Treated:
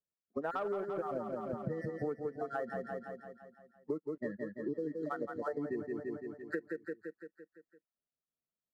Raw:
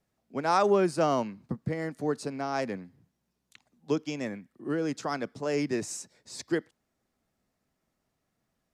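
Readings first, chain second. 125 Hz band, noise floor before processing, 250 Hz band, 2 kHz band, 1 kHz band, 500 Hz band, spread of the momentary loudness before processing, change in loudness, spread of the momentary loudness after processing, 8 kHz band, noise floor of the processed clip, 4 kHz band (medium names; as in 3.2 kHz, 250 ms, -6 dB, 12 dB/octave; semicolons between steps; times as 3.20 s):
-9.5 dB, -80 dBFS, -8.5 dB, -7.5 dB, -11.0 dB, -7.5 dB, 14 LU, -9.0 dB, 15 LU, under -30 dB, under -85 dBFS, under -20 dB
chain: random holes in the spectrogram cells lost 29%; rippled Chebyshev low-pass 1.9 kHz, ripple 6 dB; waveshaping leveller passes 1; spectral noise reduction 20 dB; on a send: feedback delay 170 ms, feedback 57%, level -7 dB; on the sum: compression 12:1, threshold -35 dBFS, peak gain reduction 16.5 dB; trim +1.5 dB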